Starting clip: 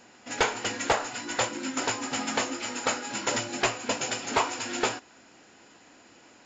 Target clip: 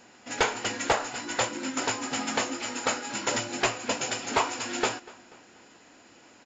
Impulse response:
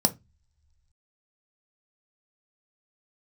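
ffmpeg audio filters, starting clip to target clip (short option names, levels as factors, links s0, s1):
-filter_complex "[0:a]asplit=2[s0][s1];[s1]adelay=242,lowpass=f=4400:p=1,volume=0.0891,asplit=2[s2][s3];[s3]adelay=242,lowpass=f=4400:p=1,volume=0.52,asplit=2[s4][s5];[s5]adelay=242,lowpass=f=4400:p=1,volume=0.52,asplit=2[s6][s7];[s7]adelay=242,lowpass=f=4400:p=1,volume=0.52[s8];[s0][s2][s4][s6][s8]amix=inputs=5:normalize=0"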